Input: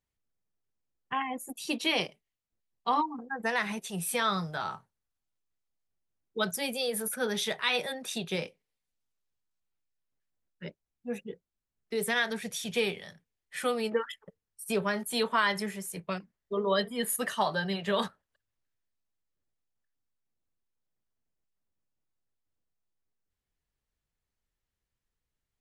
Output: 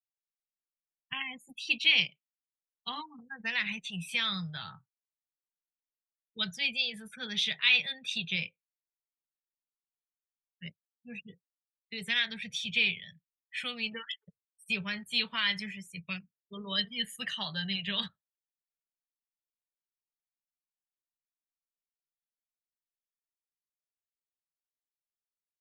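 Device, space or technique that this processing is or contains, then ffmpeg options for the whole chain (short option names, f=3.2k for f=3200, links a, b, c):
phone in a pocket: -filter_complex "[0:a]asettb=1/sr,asplit=3[a][b][c];[a]atrim=end=6.544[d];[b]atrim=start=6.54:end=7.33,asetpts=PTS-STARTPTS,afade=t=in:d=0.004:c=qsin,afade=t=out:st=0.786:d=0.004:c=qsin,lowpass=7.9k[e];[c]atrim=start=7.326[f];[d][e]acrossfade=d=0.004:c1=hsin:c2=qsin[g];[g][f]acrossfade=d=0.004:c1=qsin:c2=hsin,afftdn=nr=36:nf=-48,lowpass=3.5k,firequalizer=gain_entry='entry(150,0);entry(330,-21);entry(1200,-10);entry(2500,15)':delay=0.05:min_phase=1,equalizer=f=330:t=o:w=0.94:g=3,highshelf=f=2.3k:g=-10"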